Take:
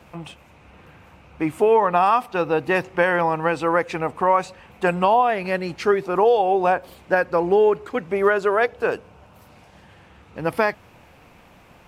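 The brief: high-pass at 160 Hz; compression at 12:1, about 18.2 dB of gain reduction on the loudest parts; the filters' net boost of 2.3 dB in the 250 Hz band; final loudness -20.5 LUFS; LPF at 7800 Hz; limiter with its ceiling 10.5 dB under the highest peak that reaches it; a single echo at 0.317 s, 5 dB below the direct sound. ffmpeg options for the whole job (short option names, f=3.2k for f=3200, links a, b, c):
-af "highpass=160,lowpass=7.8k,equalizer=f=250:t=o:g=5,acompressor=threshold=-30dB:ratio=12,alimiter=level_in=4.5dB:limit=-24dB:level=0:latency=1,volume=-4.5dB,aecho=1:1:317:0.562,volume=18dB"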